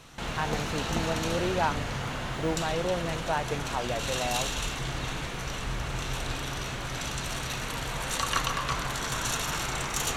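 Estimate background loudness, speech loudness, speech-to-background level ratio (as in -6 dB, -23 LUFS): -31.5 LUFS, -32.5 LUFS, -1.0 dB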